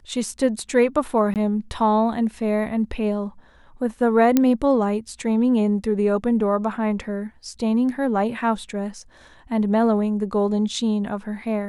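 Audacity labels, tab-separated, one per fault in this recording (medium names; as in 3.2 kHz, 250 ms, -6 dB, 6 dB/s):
1.340000	1.360000	dropout 18 ms
4.370000	4.370000	pop -4 dBFS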